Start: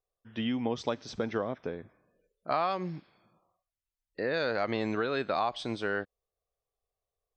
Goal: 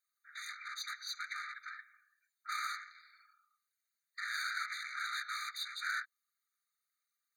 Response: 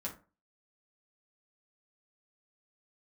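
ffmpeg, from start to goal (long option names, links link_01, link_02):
-af "afftfilt=real='hypot(re,im)*cos(2*PI*random(0))':imag='hypot(re,im)*sin(2*PI*random(1))':win_size=512:overlap=0.75,aeval=exprs='(tanh(200*val(0)+0.3)-tanh(0.3))/200':channel_layout=same,afftfilt=real='re*eq(mod(floor(b*sr/1024/1200),2),1)':imag='im*eq(mod(floor(b*sr/1024/1200),2),1)':win_size=1024:overlap=0.75,volume=15.5dB"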